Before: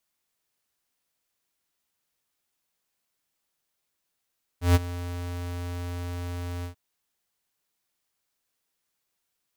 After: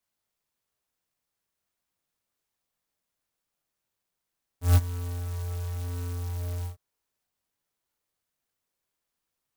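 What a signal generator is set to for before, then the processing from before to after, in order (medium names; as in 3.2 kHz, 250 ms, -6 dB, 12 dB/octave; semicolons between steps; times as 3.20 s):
ADSR square 87.9 Hz, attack 142 ms, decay 28 ms, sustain -17 dB, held 2.03 s, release 107 ms -16 dBFS
chorus voices 4, 0.52 Hz, delay 21 ms, depth 1.1 ms; sampling jitter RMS 0.11 ms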